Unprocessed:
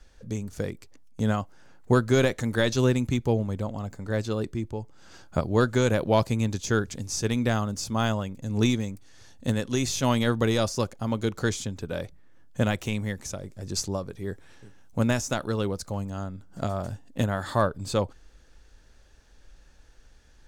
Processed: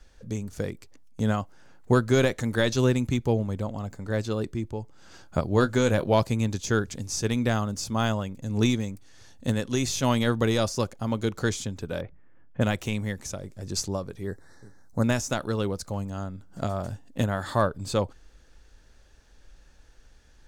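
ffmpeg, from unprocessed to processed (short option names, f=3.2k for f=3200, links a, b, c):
-filter_complex "[0:a]asettb=1/sr,asplit=3[a][b][c];[a]atrim=end=5.504[d];[b]atrim=start=5.5:end=6.14,asetpts=PTS-STARTPTS,afade=t=in:d=0.004:c=qsin,afade=t=out:st=0.636:d=0.004:c=qsin,asplit=2[e][f];[f]adelay=20,volume=-11dB[g];[e][g]amix=inputs=2:normalize=0,atrim=end_sample=28224[h];[c]atrim=start=6.136[i];[d][h]acrossfade=d=0.004:c1=hsin:c2=qsin[j];[j][i]acrossfade=d=0.004:c1=qsin:c2=hsin,asplit=3[k][l][m];[k]afade=t=out:st=12:d=0.02[n];[l]lowpass=f=2.5k:w=0.5412,lowpass=f=2.5k:w=1.3066,afade=t=in:st=12:d=0.02,afade=t=out:st=12.6:d=0.02[o];[m]afade=t=in:st=12.6:d=0.02[p];[n][o][p]amix=inputs=3:normalize=0,asettb=1/sr,asplit=3[q][r][s];[q]atrim=end=14.274[t];[r]atrim=start=14.27:end=15.04,asetpts=PTS-STARTPTS,afade=t=in:d=0.004:c=qsin,afade=t=out:st=0.766:d=0.004:c=qsin,asuperstop=centerf=2800:order=8:qfactor=1.5[u];[s]atrim=start=15.036[v];[t][u]acrossfade=d=0.004:c1=hsin:c2=qsin[w];[w][v]acrossfade=d=0.004:c1=qsin:c2=hsin"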